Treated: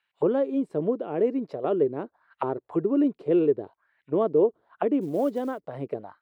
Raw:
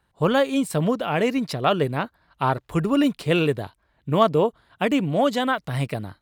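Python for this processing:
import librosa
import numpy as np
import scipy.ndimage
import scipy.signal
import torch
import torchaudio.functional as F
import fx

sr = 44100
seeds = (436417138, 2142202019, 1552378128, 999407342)

y = fx.auto_wah(x, sr, base_hz=380.0, top_hz=2500.0, q=3.2, full_db=-22.0, direction='down')
y = fx.quant_float(y, sr, bits=4, at=(5.01, 5.63))
y = y * 10.0 ** (4.0 / 20.0)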